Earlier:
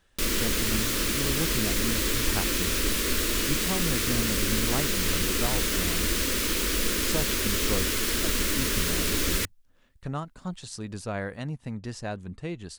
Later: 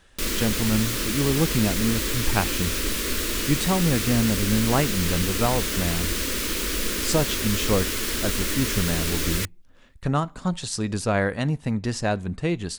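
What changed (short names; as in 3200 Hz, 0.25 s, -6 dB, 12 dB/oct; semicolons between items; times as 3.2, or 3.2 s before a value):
speech +9.5 dB; reverb: on, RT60 0.50 s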